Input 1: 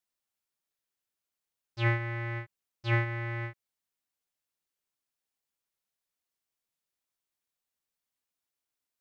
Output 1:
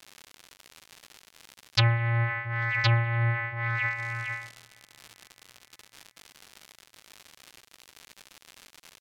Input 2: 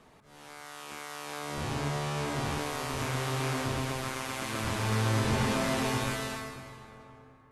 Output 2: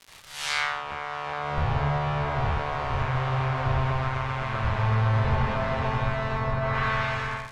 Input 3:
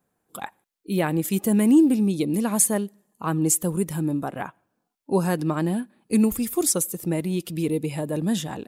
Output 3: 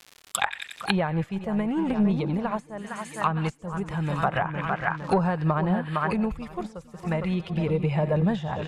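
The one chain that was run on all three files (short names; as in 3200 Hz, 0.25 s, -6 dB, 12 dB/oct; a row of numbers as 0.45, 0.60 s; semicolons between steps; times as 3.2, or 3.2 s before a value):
on a send: split-band echo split 1900 Hz, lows 0.459 s, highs 90 ms, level -10.5 dB; on the sum: gate with hold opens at -49 dBFS; in parallel at -7 dB: hard clip -18 dBFS; on the sum: passive tone stack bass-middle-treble 10-0-10; AGC gain up to 15.5 dB; crackle 150/s -43 dBFS; compressor 10:1, threshold -23 dBFS; bell 3300 Hz +4.5 dB 2.3 oct; treble ducked by the level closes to 740 Hz, closed at -24 dBFS; match loudness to -27 LUFS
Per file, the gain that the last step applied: +8.5, +8.5, +7.0 dB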